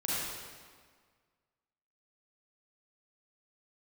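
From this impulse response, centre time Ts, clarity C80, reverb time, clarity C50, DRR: 136 ms, −2.0 dB, 1.7 s, −5.5 dB, −8.0 dB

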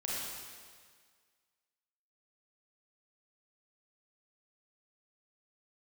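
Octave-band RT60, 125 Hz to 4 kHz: 1.7, 1.7, 1.7, 1.8, 1.7, 1.7 seconds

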